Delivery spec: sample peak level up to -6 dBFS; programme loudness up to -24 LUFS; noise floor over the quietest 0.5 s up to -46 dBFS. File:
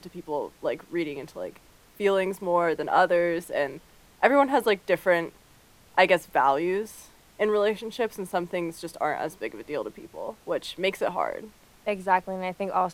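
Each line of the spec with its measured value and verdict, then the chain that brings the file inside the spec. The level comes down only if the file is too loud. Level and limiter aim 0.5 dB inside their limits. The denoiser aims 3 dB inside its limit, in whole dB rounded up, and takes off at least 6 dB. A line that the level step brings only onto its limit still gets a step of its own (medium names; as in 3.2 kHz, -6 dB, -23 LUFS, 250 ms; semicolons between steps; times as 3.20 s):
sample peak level -3.5 dBFS: fail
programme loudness -26.5 LUFS: pass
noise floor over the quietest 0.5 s -56 dBFS: pass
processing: peak limiter -6.5 dBFS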